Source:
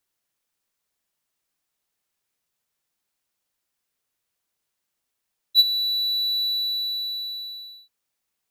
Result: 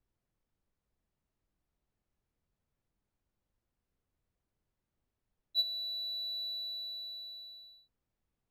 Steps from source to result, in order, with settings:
spectral tilt −5 dB per octave
level −4.5 dB

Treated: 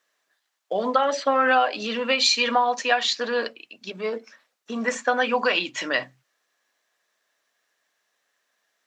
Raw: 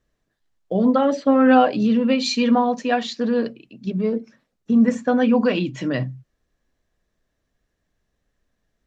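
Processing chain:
high-pass filter 890 Hz 12 dB per octave
downward compressor 4 to 1, threshold −25 dBFS, peak gain reduction 8 dB
level +8.5 dB

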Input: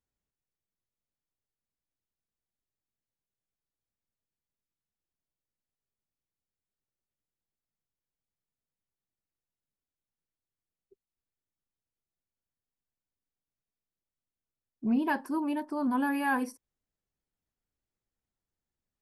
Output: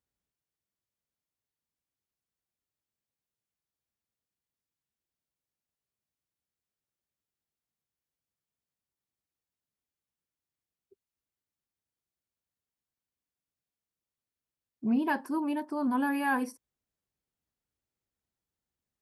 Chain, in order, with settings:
high-pass filter 48 Hz

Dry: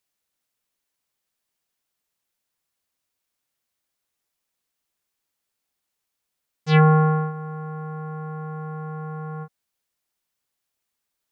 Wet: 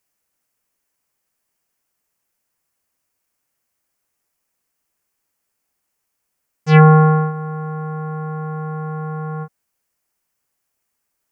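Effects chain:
parametric band 3,700 Hz −10 dB 0.59 octaves
level +6.5 dB

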